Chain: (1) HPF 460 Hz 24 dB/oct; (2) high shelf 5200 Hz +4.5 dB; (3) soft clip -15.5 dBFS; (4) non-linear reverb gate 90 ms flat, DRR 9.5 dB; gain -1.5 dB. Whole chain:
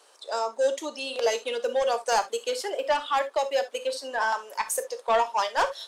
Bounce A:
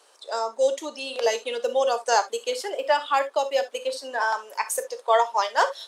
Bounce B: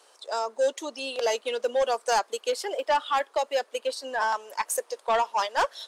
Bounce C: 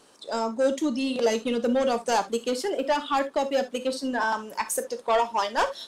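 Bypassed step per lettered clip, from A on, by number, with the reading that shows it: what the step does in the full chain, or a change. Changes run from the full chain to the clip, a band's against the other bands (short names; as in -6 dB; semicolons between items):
3, distortion -14 dB; 4, crest factor change -4.0 dB; 1, 250 Hz band +17.5 dB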